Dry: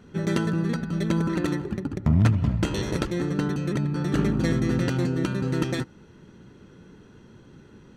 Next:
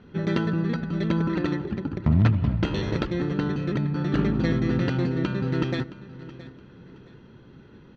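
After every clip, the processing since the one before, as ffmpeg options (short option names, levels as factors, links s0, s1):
-af "lowpass=f=4500:w=0.5412,lowpass=f=4500:w=1.3066,aecho=1:1:669|1338|2007:0.141|0.0452|0.0145"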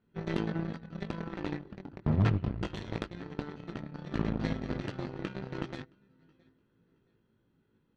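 -af "flanger=delay=18:depth=2.7:speed=0.28,aeval=exprs='0.282*(cos(1*acos(clip(val(0)/0.282,-1,1)))-cos(1*PI/2))+0.00224*(cos(5*acos(clip(val(0)/0.282,-1,1)))-cos(5*PI/2))+0.0355*(cos(7*acos(clip(val(0)/0.282,-1,1)))-cos(7*PI/2))':c=same,volume=0.631"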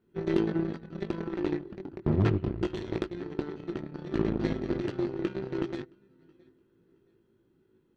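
-af "equalizer=f=360:t=o:w=0.42:g=13"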